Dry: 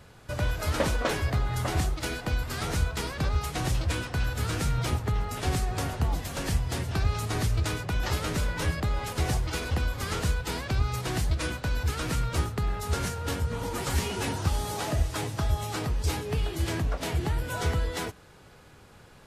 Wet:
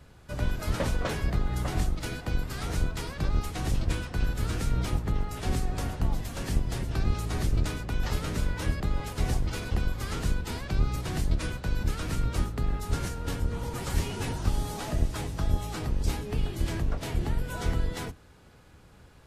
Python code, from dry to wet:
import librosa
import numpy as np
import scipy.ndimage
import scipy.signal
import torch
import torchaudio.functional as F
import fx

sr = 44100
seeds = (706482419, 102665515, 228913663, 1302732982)

y = fx.octave_divider(x, sr, octaves=1, level_db=4.0)
y = F.gain(torch.from_numpy(y), -4.5).numpy()